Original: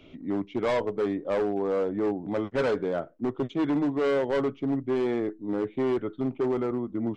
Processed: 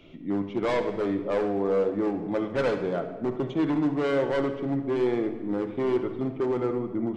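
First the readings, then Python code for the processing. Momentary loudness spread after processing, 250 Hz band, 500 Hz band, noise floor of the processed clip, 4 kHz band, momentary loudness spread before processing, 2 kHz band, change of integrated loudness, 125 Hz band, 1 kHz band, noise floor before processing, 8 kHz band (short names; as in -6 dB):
5 LU, +1.0 dB, +0.5 dB, -39 dBFS, +1.0 dB, 5 LU, +1.0 dB, +1.0 dB, +2.0 dB, +1.0 dB, -52 dBFS, n/a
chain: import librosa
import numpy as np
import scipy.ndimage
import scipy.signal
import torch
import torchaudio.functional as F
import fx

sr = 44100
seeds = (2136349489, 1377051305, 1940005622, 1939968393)

p1 = x + fx.echo_feedback(x, sr, ms=72, feedback_pct=53, wet_db=-14.5, dry=0)
y = fx.room_shoebox(p1, sr, seeds[0], volume_m3=2100.0, walls='mixed', distance_m=0.81)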